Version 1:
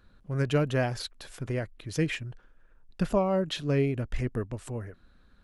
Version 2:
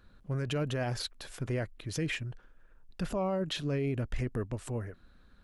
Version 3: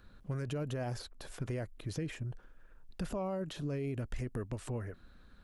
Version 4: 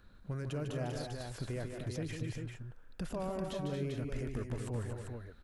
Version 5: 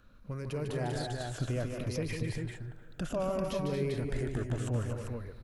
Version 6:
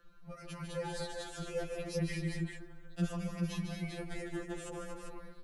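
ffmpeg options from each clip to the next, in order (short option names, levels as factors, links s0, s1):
-af "alimiter=level_in=1.06:limit=0.0631:level=0:latency=1:release=38,volume=0.944"
-filter_complex "[0:a]acrossover=split=1200|5700[s0][s1][s2];[s0]acompressor=threshold=0.0158:ratio=4[s3];[s1]acompressor=threshold=0.00178:ratio=4[s4];[s2]acompressor=threshold=0.00158:ratio=4[s5];[s3][s4][s5]amix=inputs=3:normalize=0,volume=1.19"
-af "aecho=1:1:150|226|245|394:0.447|0.376|0.282|0.531,volume=0.794"
-filter_complex "[0:a]afftfilt=real='re*pow(10,7/40*sin(2*PI*(0.88*log(max(b,1)*sr/1024/100)/log(2)-(-0.62)*(pts-256)/sr)))':imag='im*pow(10,7/40*sin(2*PI*(0.88*log(max(b,1)*sr/1024/100)/log(2)-(-0.62)*(pts-256)/sr)))':win_size=1024:overlap=0.75,asplit=2[s0][s1];[s1]adelay=299,lowpass=f=1800:p=1,volume=0.112,asplit=2[s2][s3];[s3]adelay=299,lowpass=f=1800:p=1,volume=0.53,asplit=2[s4][s5];[s5]adelay=299,lowpass=f=1800:p=1,volume=0.53,asplit=2[s6][s7];[s7]adelay=299,lowpass=f=1800:p=1,volume=0.53[s8];[s0][s2][s4][s6][s8]amix=inputs=5:normalize=0,dynaudnorm=f=110:g=11:m=1.68"
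-af "afftfilt=real='re*2.83*eq(mod(b,8),0)':imag='im*2.83*eq(mod(b,8),0)':win_size=2048:overlap=0.75,volume=1.12"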